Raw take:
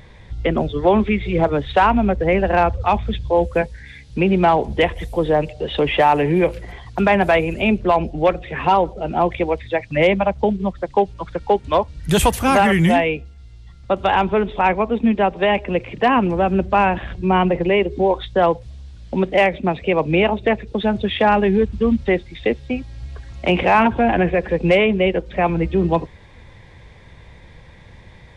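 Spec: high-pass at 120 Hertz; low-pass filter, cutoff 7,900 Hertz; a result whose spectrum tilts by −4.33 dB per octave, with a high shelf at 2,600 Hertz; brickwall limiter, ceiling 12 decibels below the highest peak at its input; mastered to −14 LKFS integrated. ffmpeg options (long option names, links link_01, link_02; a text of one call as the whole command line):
ffmpeg -i in.wav -af "highpass=120,lowpass=7900,highshelf=frequency=2600:gain=5,volume=11dB,alimiter=limit=-4.5dB:level=0:latency=1" out.wav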